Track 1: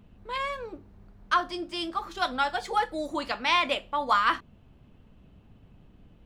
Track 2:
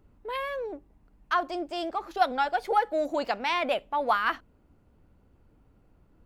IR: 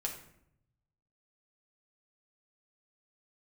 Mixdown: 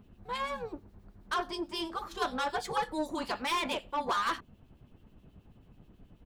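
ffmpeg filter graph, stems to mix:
-filter_complex "[0:a]highshelf=frequency=8900:gain=6.5,acrossover=split=2300[link_01][link_02];[link_01]aeval=exprs='val(0)*(1-0.7/2+0.7/2*cos(2*PI*9.3*n/s))':channel_layout=same[link_03];[link_02]aeval=exprs='val(0)*(1-0.7/2-0.7/2*cos(2*PI*9.3*n/s))':channel_layout=same[link_04];[link_03][link_04]amix=inputs=2:normalize=0,asoftclip=type=tanh:threshold=-27dB,volume=1dB[link_05];[1:a]aecho=1:1:1.5:0.65,aeval=exprs='val(0)*sin(2*PI*310*n/s)':channel_layout=same,volume=-13dB[link_06];[link_05][link_06]amix=inputs=2:normalize=0,equalizer=frequency=2300:width_type=o:width=0.77:gain=-2"

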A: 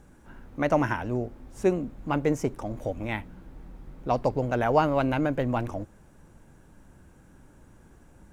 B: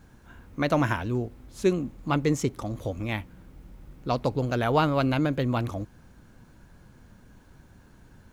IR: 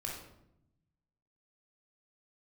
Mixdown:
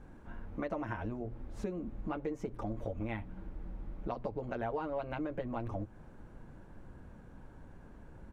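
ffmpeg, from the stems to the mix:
-filter_complex "[0:a]bass=frequency=250:gain=1,treble=frequency=4000:gain=-11,bandreject=frequency=60:width_type=h:width=6,bandreject=frequency=120:width_type=h:width=6,acompressor=threshold=-28dB:ratio=6,volume=-4dB[link_01];[1:a]acompressor=threshold=-35dB:ratio=2.5,bandpass=frequency=560:width_type=q:width=0.75:csg=0,volume=-1,adelay=7.9,volume=1dB[link_02];[link_01][link_02]amix=inputs=2:normalize=0,lowshelf=frequency=100:gain=7,acompressor=threshold=-37dB:ratio=2"

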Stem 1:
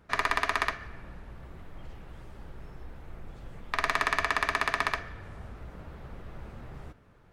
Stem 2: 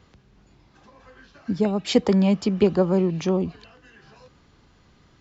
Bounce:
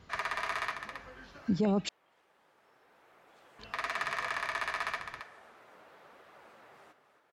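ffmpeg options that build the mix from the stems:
ffmpeg -i stem1.wav -i stem2.wav -filter_complex "[0:a]highpass=550,flanger=delay=0.6:depth=9.7:regen=-49:speed=0.95:shape=triangular,volume=0.5dB,asplit=2[link_01][link_02];[link_02]volume=-12dB[link_03];[1:a]volume=-2dB,asplit=3[link_04][link_05][link_06];[link_04]atrim=end=1.89,asetpts=PTS-STARTPTS,afade=type=out:start_time=1.886:duration=0.004:curve=hsin[link_07];[link_05]atrim=start=1.89:end=3.59,asetpts=PTS-STARTPTS,volume=0[link_08];[link_06]atrim=start=3.59,asetpts=PTS-STARTPTS,afade=type=in:duration=0.004:curve=hsin[link_09];[link_07][link_08][link_09]concat=n=3:v=0:a=1,asplit=2[link_10][link_11];[link_11]apad=whole_len=322899[link_12];[link_01][link_12]sidechaincompress=threshold=-38dB:ratio=8:attack=40:release=1360[link_13];[link_03]aecho=0:1:272:1[link_14];[link_13][link_10][link_14]amix=inputs=3:normalize=0,alimiter=limit=-20.5dB:level=0:latency=1:release=13" out.wav

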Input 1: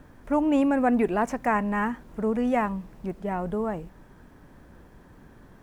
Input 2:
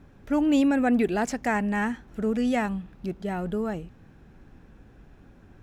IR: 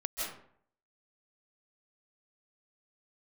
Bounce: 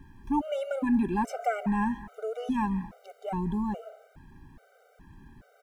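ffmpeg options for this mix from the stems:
-filter_complex "[0:a]aecho=1:1:1.3:0.43,volume=-3.5dB,asplit=2[link_01][link_02];[link_02]volume=-15.5dB[link_03];[1:a]alimiter=limit=-23dB:level=0:latency=1:release=217,volume=-5dB[link_04];[2:a]atrim=start_sample=2205[link_05];[link_03][link_05]afir=irnorm=-1:irlink=0[link_06];[link_01][link_04][link_06]amix=inputs=3:normalize=0,afftfilt=real='re*gt(sin(2*PI*1.2*pts/sr)*(1-2*mod(floor(b*sr/1024/390),2)),0)':imag='im*gt(sin(2*PI*1.2*pts/sr)*(1-2*mod(floor(b*sr/1024/390),2)),0)':win_size=1024:overlap=0.75"

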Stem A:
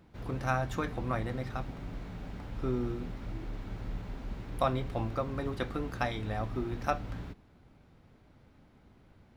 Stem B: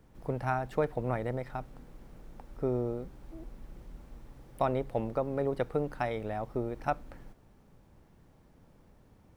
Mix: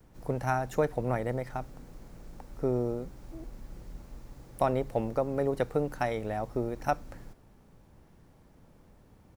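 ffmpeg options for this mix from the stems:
ffmpeg -i stem1.wav -i stem2.wav -filter_complex "[0:a]aexciter=amount=7.9:drive=7.8:freq=4700,volume=-19dB[link_01];[1:a]adelay=4.2,volume=2dB[link_02];[link_01][link_02]amix=inputs=2:normalize=0" out.wav

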